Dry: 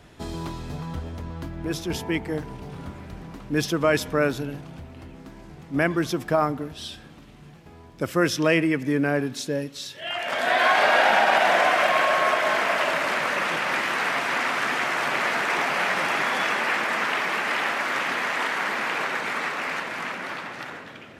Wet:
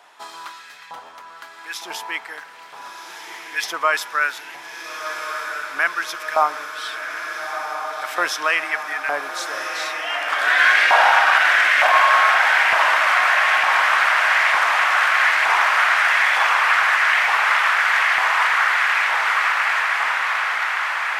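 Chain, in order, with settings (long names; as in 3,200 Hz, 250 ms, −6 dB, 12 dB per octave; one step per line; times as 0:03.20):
auto-filter high-pass saw up 1.1 Hz 850–2,000 Hz
feedback delay with all-pass diffusion 1,375 ms, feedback 74%, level −6 dB
level +2 dB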